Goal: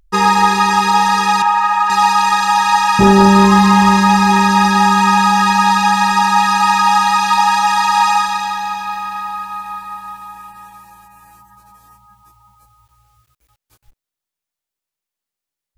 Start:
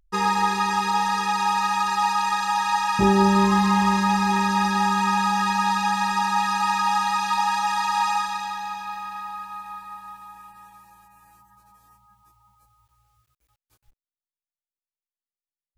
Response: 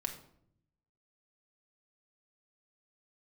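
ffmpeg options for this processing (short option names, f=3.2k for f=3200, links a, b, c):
-filter_complex "[0:a]asettb=1/sr,asplit=3[a][b][c];[a]atrim=end=1.424[d];[b]atrim=start=1.42:end=1.9,asetpts=PTS-STARTPTS,afade=t=in:d=0.004:c=qsin,afade=t=out:st=0.476:d=0.004:c=qsin,acrossover=split=540 2300:gain=0.224 1 0.224[e][f][g];[e][f][g]amix=inputs=3:normalize=0[h];[c]atrim=start=1.896[i];[d][h]acrossfade=d=0.004:c1=hsin:c2=qsin[j];[j][i]acrossfade=d=0.004:c1=qsin:c2=hsin,apsyclip=11.5dB,volume=-1.5dB"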